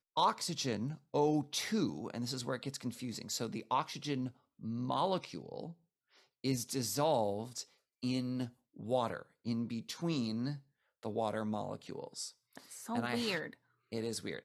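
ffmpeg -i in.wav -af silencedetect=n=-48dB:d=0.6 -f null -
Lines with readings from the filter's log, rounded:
silence_start: 5.72
silence_end: 6.44 | silence_duration: 0.72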